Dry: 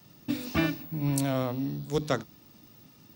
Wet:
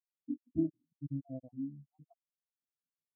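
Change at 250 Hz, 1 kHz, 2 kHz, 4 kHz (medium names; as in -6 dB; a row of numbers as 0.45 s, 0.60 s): -8.0 dB, under -30 dB, under -40 dB, under -40 dB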